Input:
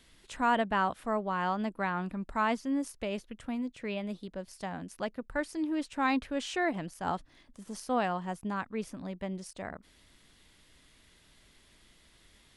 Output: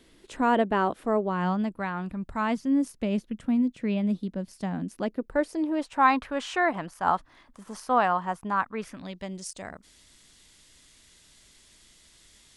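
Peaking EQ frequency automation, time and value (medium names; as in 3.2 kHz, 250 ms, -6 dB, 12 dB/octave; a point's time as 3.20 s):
peaking EQ +12 dB 1.5 oct
1.22 s 360 Hz
1.93 s 60 Hz
2.83 s 210 Hz
4.81 s 210 Hz
6.10 s 1.1 kHz
8.74 s 1.1 kHz
9.31 s 7.1 kHz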